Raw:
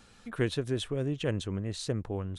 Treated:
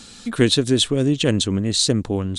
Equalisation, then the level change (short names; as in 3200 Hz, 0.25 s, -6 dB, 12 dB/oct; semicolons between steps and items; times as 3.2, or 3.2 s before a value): ten-band EQ 250 Hz +8 dB, 4000 Hz +10 dB, 8000 Hz +12 dB; +8.5 dB